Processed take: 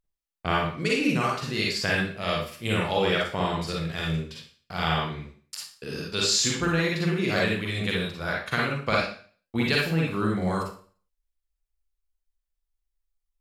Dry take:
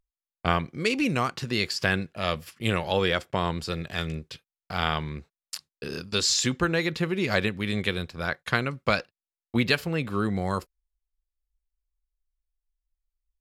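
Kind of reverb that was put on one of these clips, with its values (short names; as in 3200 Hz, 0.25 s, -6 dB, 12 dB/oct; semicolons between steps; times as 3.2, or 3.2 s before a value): Schroeder reverb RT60 0.44 s, DRR -3.5 dB; gain -4 dB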